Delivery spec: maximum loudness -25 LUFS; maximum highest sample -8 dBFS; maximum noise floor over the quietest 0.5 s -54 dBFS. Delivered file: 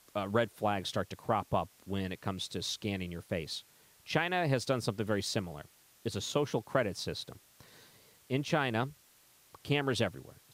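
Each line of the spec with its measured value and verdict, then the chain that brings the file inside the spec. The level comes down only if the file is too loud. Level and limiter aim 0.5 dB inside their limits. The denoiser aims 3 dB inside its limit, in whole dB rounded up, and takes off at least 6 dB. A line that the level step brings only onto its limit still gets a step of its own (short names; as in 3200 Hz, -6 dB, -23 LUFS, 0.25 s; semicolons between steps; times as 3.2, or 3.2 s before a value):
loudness -34.0 LUFS: OK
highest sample -14.0 dBFS: OK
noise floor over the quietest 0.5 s -64 dBFS: OK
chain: none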